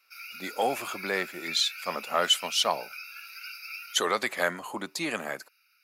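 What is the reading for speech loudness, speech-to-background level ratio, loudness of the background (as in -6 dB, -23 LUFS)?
-28.5 LUFS, 11.0 dB, -39.5 LUFS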